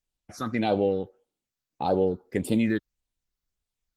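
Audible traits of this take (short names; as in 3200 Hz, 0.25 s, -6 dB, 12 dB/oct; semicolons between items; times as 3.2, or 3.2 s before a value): phasing stages 6, 1.7 Hz, lowest notch 660–1800 Hz; Opus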